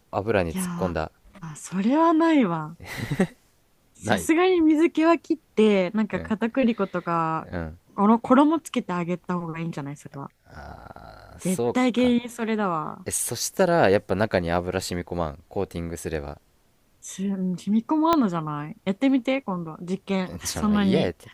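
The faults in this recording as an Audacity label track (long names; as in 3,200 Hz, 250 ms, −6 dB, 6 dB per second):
18.130000	18.130000	click −7 dBFS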